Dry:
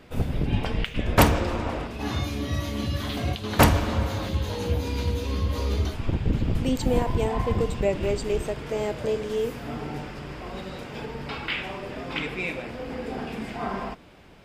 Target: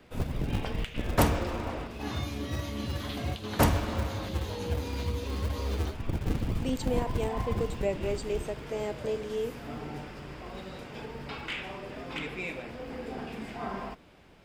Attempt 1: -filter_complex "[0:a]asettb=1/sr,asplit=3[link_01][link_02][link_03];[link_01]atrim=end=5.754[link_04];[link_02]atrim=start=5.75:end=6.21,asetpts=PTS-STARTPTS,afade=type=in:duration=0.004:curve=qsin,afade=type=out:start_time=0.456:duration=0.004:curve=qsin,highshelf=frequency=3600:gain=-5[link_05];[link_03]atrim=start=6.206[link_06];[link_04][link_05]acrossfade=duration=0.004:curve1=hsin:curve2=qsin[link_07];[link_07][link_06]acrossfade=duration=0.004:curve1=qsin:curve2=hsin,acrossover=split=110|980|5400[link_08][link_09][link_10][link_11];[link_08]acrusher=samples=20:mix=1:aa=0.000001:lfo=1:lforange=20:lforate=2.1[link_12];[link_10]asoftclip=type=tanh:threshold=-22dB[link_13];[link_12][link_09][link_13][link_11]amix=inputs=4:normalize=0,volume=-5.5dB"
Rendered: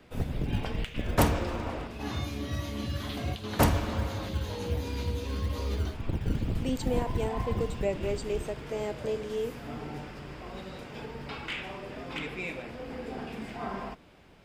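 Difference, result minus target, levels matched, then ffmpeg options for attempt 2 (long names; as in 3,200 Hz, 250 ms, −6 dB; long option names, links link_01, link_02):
sample-and-hold swept by an LFO: distortion −12 dB
-filter_complex "[0:a]asettb=1/sr,asplit=3[link_01][link_02][link_03];[link_01]atrim=end=5.754[link_04];[link_02]atrim=start=5.75:end=6.21,asetpts=PTS-STARTPTS,afade=type=in:duration=0.004:curve=qsin,afade=type=out:start_time=0.456:duration=0.004:curve=qsin,highshelf=frequency=3600:gain=-5[link_05];[link_03]atrim=start=6.206[link_06];[link_04][link_05]acrossfade=duration=0.004:curve1=hsin:curve2=qsin[link_07];[link_07][link_06]acrossfade=duration=0.004:curve1=qsin:curve2=hsin,acrossover=split=110|980|5400[link_08][link_09][link_10][link_11];[link_08]acrusher=samples=73:mix=1:aa=0.000001:lfo=1:lforange=73:lforate=2.1[link_12];[link_10]asoftclip=type=tanh:threshold=-22dB[link_13];[link_12][link_09][link_13][link_11]amix=inputs=4:normalize=0,volume=-5.5dB"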